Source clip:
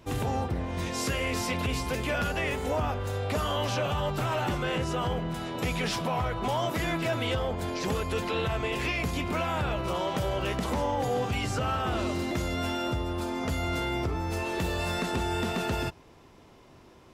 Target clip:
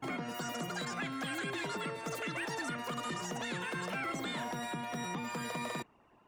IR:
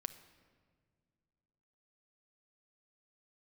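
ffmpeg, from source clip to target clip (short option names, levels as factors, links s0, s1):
-af "afftdn=nr=14:nf=-49,asetrate=120393,aresample=44100,highshelf=f=4400:g=-7,volume=0.398"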